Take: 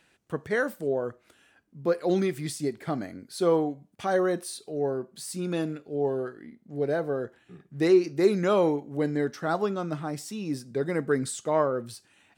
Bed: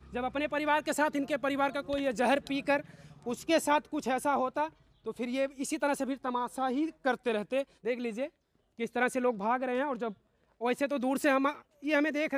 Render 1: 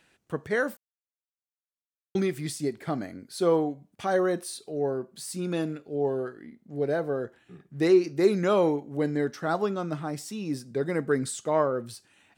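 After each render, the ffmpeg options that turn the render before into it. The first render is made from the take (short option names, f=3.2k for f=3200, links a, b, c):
-filter_complex "[0:a]asplit=3[a][b][c];[a]atrim=end=0.77,asetpts=PTS-STARTPTS,afade=t=out:st=0.766:d=0.004:c=hsin[d];[b]atrim=start=0.77:end=2.15,asetpts=PTS-STARTPTS,volume=0[e];[c]atrim=start=2.15,asetpts=PTS-STARTPTS,afade=t=in:d=0.004:c=hsin[f];[d][e][f]concat=n=3:v=0:a=1"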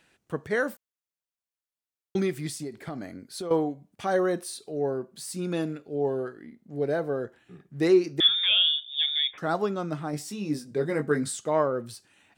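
-filter_complex "[0:a]asettb=1/sr,asplit=3[a][b][c];[a]atrim=end=2.474[d];[b]atrim=start=2.47:end=3.51,asetpts=PTS-STARTPTS,afade=t=in:d=0.004:c=qsin,afade=t=out:st=1.036:d=0.004:c=qsin,acompressor=threshold=-31dB:ratio=6:attack=3.2:release=140:knee=1:detection=peak[e];[c]atrim=start=3.506[f];[d][e]acrossfade=d=0.004:c1=hsin:c2=qsin[g];[g][f]acrossfade=d=0.004:c1=qsin:c2=hsin,asettb=1/sr,asplit=3[h][i][j];[h]atrim=end=8.204[k];[i]atrim=start=8.2:end=9.38,asetpts=PTS-STARTPTS,afade=t=in:d=0.004:c=qsin,afade=t=out:st=1.176:d=0.004:c=qsin,lowpass=f=3.2k:t=q:w=0.5098,lowpass=f=3.2k:t=q:w=0.6013,lowpass=f=3.2k:t=q:w=0.9,lowpass=f=3.2k:t=q:w=2.563,afreqshift=-3800[l];[j]atrim=start=9.376[m];[k][l]acrossfade=d=0.004:c1=hsin:c2=qsin[n];[n][m]acrossfade=d=0.004:c1=qsin:c2=hsin,asettb=1/sr,asplit=3[o][p][q];[o]atrim=end=10.114[r];[p]atrim=start=10.11:end=11.37,asetpts=PTS-STARTPTS,afade=t=in:d=0.004:c=qsin,afade=t=out:st=1.256:d=0.004:c=qsin,asplit=2[s][t];[t]adelay=20,volume=-5.5dB[u];[s][u]amix=inputs=2:normalize=0,atrim=end_sample=55566[v];[q]atrim=start=11.366[w];[r][v]acrossfade=d=0.004:c1=hsin:c2=qsin[x];[x][w]acrossfade=d=0.004:c1=qsin:c2=hsin"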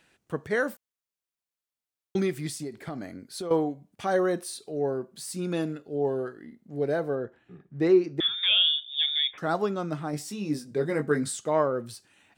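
-filter_complex "[0:a]asettb=1/sr,asplit=3[a][b][c];[a]atrim=end=5.724[d];[b]atrim=start=5.72:end=6.59,asetpts=PTS-STARTPTS,afade=t=in:d=0.004:c=qsin,afade=t=out:st=0.866:d=0.004:c=qsin,asuperstop=centerf=2300:order=8:qfactor=6.5[e];[c]atrim=start=6.586[f];[d][e]acrossfade=d=0.004:c1=hsin:c2=qsin[g];[g][f]acrossfade=d=0.004:c1=qsin:c2=hsin,asettb=1/sr,asplit=3[h][i][j];[h]atrim=end=7.154[k];[i]atrim=start=7.15:end=8.43,asetpts=PTS-STARTPTS,afade=t=in:d=0.004:c=qsin,afade=t=out:st=1.276:d=0.004:c=qsin,lowpass=f=1.8k:p=1[l];[j]atrim=start=8.426[m];[k][l]acrossfade=d=0.004:c1=hsin:c2=qsin[n];[n][m]acrossfade=d=0.004:c1=qsin:c2=hsin"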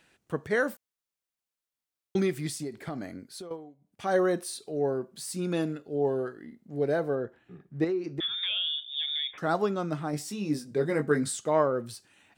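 -filter_complex "[0:a]asettb=1/sr,asplit=3[a][b][c];[a]atrim=end=7.844[d];[b]atrim=start=7.84:end=9.38,asetpts=PTS-STARTPTS,afade=t=in:d=0.004:c=qsin,afade=t=out:st=1.536:d=0.004:c=qsin,acompressor=threshold=-28dB:ratio=4:attack=3.2:release=140:knee=1:detection=peak[e];[c]atrim=start=9.376[f];[d][e]acrossfade=d=0.004:c1=hsin:c2=qsin[g];[g][f]acrossfade=d=0.004:c1=qsin:c2=hsin,asplit=3[h][i][j];[h]atrim=end=3.57,asetpts=PTS-STARTPTS,afade=t=out:st=3.19:d=0.38:silence=0.112202[k];[i]atrim=start=3.57:end=3.78,asetpts=PTS-STARTPTS,volume=-19dB[l];[j]atrim=start=3.78,asetpts=PTS-STARTPTS,afade=t=in:d=0.38:silence=0.112202[m];[k][l][m]concat=n=3:v=0:a=1"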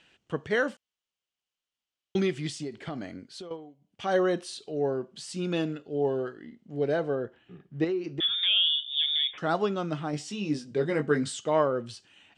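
-af "lowpass=f=7.5k:w=0.5412,lowpass=f=7.5k:w=1.3066,equalizer=f=3k:w=3.9:g=10.5"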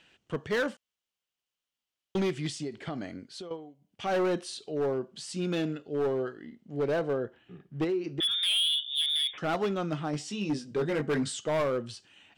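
-af "asoftclip=type=hard:threshold=-24dB"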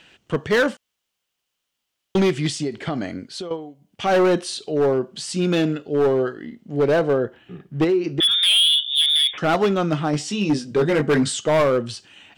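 -af "volume=10.5dB"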